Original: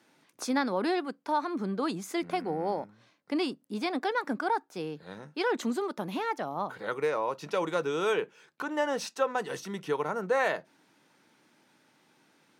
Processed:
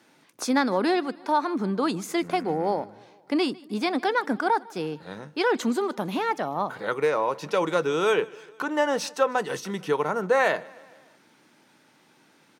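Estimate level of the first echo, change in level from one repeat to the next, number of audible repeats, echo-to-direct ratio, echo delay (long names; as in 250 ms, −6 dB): −23.5 dB, −4.5 dB, 3, −21.5 dB, 152 ms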